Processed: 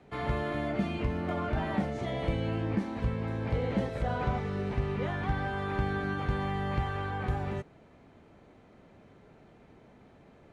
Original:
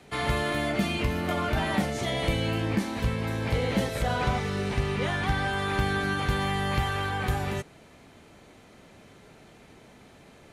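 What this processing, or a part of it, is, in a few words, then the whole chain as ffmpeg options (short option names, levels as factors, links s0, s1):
through cloth: -af "lowpass=8900,highshelf=f=2600:g=-16,volume=0.708"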